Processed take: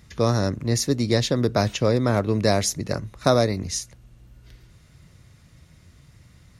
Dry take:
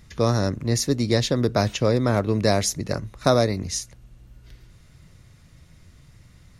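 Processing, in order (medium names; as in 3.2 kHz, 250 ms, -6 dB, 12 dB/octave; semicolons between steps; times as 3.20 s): high-pass 41 Hz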